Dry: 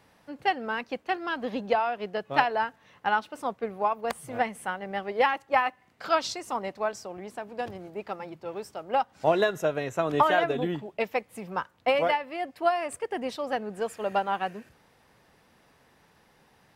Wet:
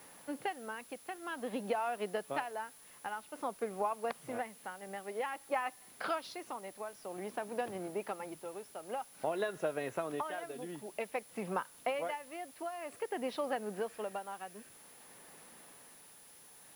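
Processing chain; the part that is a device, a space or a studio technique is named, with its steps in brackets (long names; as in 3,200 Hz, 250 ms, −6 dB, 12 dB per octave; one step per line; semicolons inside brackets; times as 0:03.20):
medium wave at night (band-pass filter 190–3,600 Hz; downward compressor 4 to 1, threshold −36 dBFS, peak gain reduction 16.5 dB; amplitude tremolo 0.52 Hz, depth 63%; steady tone 10,000 Hz −61 dBFS; white noise bed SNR 21 dB)
level +3 dB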